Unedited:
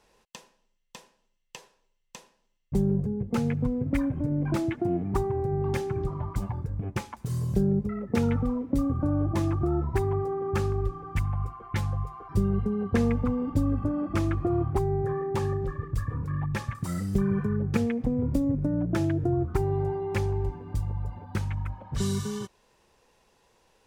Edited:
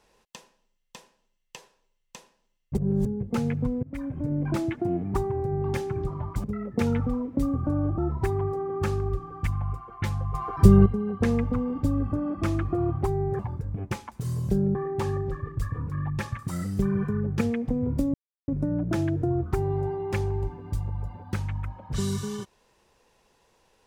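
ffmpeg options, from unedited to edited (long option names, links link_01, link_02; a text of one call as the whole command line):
ffmpeg -i in.wav -filter_complex "[0:a]asplit=11[link_01][link_02][link_03][link_04][link_05][link_06][link_07][link_08][link_09][link_10][link_11];[link_01]atrim=end=2.772[link_12];[link_02]atrim=start=2.768:end=3.052,asetpts=PTS-STARTPTS,areverse[link_13];[link_03]atrim=start=3.048:end=3.83,asetpts=PTS-STARTPTS,afade=type=out:start_time=0.778:duration=0.004:curve=hsin:silence=0.1[link_14];[link_04]atrim=start=3.83:end=6.442,asetpts=PTS-STARTPTS,afade=type=in:duration=0.47:silence=0.1[link_15];[link_05]atrim=start=7.798:end=9.342[link_16];[link_06]atrim=start=9.698:end=12.062[link_17];[link_07]atrim=start=12.058:end=12.582,asetpts=PTS-STARTPTS,volume=10.5dB[link_18];[link_08]atrim=start=12.578:end=15.112[link_19];[link_09]atrim=start=6.438:end=7.802[link_20];[link_10]atrim=start=15.108:end=18.5,asetpts=PTS-STARTPTS,afade=type=out:start_time=3.388:duration=0.004:curve=hsin,apad=pad_dur=0.34[link_21];[link_11]atrim=start=18.5,asetpts=PTS-STARTPTS,afade=type=in:duration=0.004:curve=hsin[link_22];[link_12][link_13]acrossfade=duration=0.004:curve1=hsin:curve2=hsin[link_23];[link_14][link_15]concat=n=2:v=0:a=1[link_24];[link_23][link_24]acrossfade=duration=0.004:curve1=hsin:curve2=hsin[link_25];[link_25][link_16]acrossfade=duration=0.004:curve1=hsin:curve2=hsin[link_26];[link_26][link_17]acrossfade=duration=0.004:curve1=hsin:curve2=hsin[link_27];[link_27][link_18]acrossfade=duration=0.004:curve1=hsin:curve2=hsin[link_28];[link_28][link_19]acrossfade=duration=0.004:curve1=hsin:curve2=hsin[link_29];[link_29][link_20]acrossfade=duration=0.004:curve1=hsin:curve2=hsin[link_30];[link_21][link_22]concat=n=2:v=0:a=1[link_31];[link_30][link_31]acrossfade=duration=0.004:curve1=hsin:curve2=hsin" out.wav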